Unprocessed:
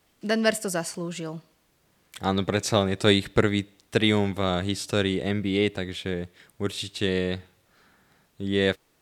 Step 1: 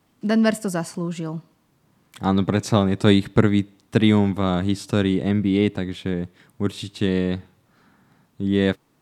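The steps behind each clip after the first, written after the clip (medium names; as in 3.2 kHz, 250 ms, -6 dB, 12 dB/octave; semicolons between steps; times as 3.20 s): graphic EQ 125/250/1000 Hz +10/+10/+7 dB; trim -3 dB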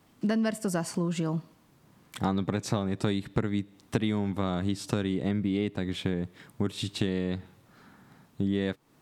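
compression 6:1, threshold -27 dBFS, peak gain reduction 17 dB; trim +2 dB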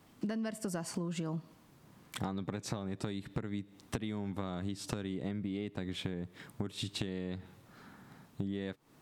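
compression, threshold -34 dBFS, peak gain reduction 13 dB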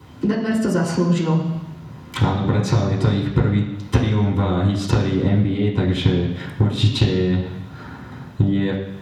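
reverberation RT60 1.1 s, pre-delay 3 ms, DRR -5 dB; trim +5 dB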